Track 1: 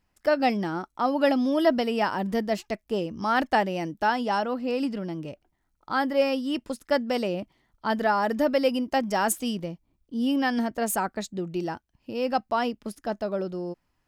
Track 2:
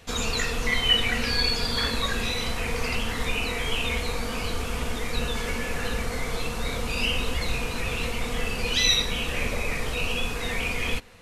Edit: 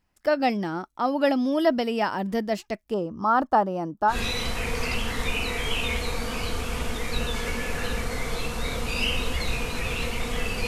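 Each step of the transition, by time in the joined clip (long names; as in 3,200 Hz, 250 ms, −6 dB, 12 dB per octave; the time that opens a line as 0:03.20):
track 1
0:02.94–0:04.17: high shelf with overshoot 1,600 Hz −9 dB, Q 3
0:04.12: continue with track 2 from 0:02.13, crossfade 0.10 s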